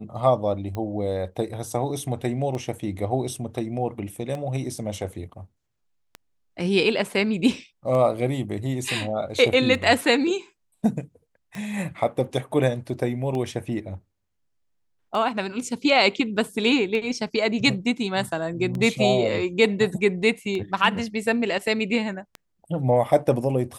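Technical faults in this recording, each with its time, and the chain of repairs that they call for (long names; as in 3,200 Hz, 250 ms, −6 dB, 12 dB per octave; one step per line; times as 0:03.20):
scratch tick 33 1/3 rpm −19 dBFS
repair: click removal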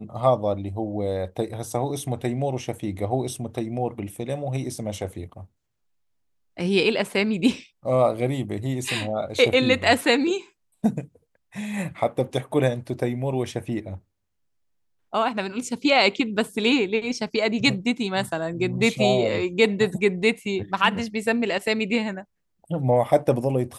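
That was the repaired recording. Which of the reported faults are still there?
none of them is left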